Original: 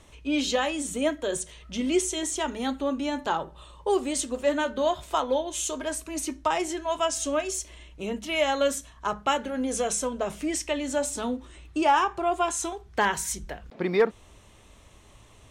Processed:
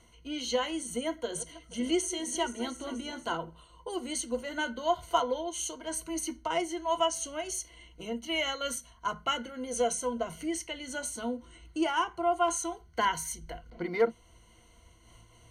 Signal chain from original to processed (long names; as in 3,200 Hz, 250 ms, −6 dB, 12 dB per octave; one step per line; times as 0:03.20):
0:01.09–0:03.36: feedback delay that plays each chunk backwards 240 ms, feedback 63%, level −13 dB
EQ curve with evenly spaced ripples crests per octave 1.9, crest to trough 16 dB
amplitude modulation by smooth noise, depth 55%
level −4.5 dB